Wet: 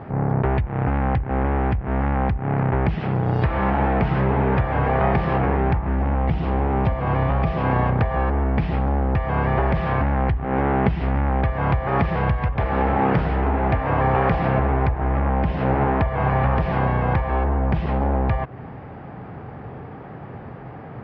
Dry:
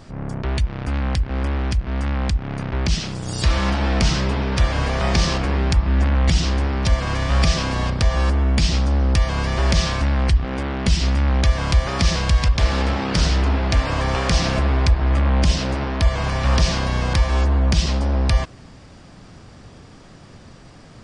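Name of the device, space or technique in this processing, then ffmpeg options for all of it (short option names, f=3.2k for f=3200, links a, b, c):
bass amplifier: -filter_complex "[0:a]acompressor=threshold=-23dB:ratio=4,highpass=72,equalizer=f=130:t=q:w=4:g=5,equalizer=f=430:t=q:w=4:g=6,equalizer=f=800:t=q:w=4:g=9,lowpass=f=2.1k:w=0.5412,lowpass=f=2.1k:w=1.3066,asettb=1/sr,asplit=3[a][b][c];[a]atrim=end=5.964[d];[b]atrim=start=5.96:end=7.65,asetpts=PTS-STARTPTS,afade=t=in:d=0.004:c=qsin,afade=t=out:st=1.686:d=0.004:c=qsin,equalizer=f=1.7k:t=o:w=0.77:g=-4.5[e];[c]atrim=start=7.646[f];[d][e]acrossfade=d=0.004:c1=hsin:c2=qsin[g];[g][f]acrossfade=d=0.004:c1=qsin:c2=hsin,volume=6dB"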